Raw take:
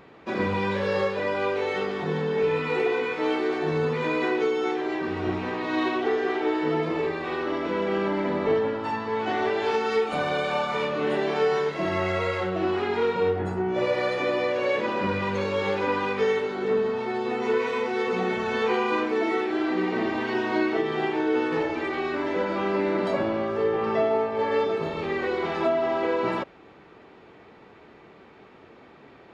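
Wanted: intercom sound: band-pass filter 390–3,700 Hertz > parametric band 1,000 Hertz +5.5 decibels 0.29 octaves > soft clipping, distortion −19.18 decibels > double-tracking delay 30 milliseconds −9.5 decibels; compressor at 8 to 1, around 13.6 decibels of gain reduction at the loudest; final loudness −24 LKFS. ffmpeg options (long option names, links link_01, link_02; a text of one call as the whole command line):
ffmpeg -i in.wav -filter_complex "[0:a]acompressor=threshold=-34dB:ratio=8,highpass=390,lowpass=3700,equalizer=frequency=1000:width_type=o:width=0.29:gain=5.5,asoftclip=threshold=-31.5dB,asplit=2[link_01][link_02];[link_02]adelay=30,volume=-9.5dB[link_03];[link_01][link_03]amix=inputs=2:normalize=0,volume=15dB" out.wav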